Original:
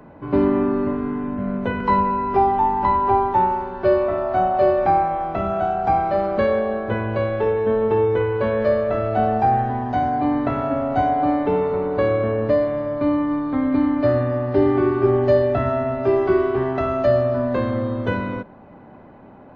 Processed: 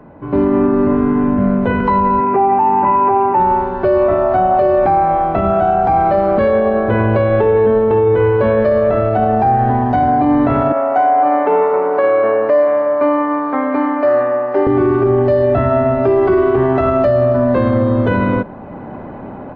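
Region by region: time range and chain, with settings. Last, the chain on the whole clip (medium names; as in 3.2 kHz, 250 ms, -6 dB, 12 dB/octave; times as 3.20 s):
2.20–3.40 s: median filter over 15 samples + band-pass 160–3300 Hz + careless resampling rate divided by 8×, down none, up filtered
10.72–14.67 s: high-pass 600 Hz + peaking EQ 3.8 kHz -11.5 dB 0.81 oct
whole clip: treble shelf 3.1 kHz -10.5 dB; level rider; loudness maximiser +8.5 dB; trim -4.5 dB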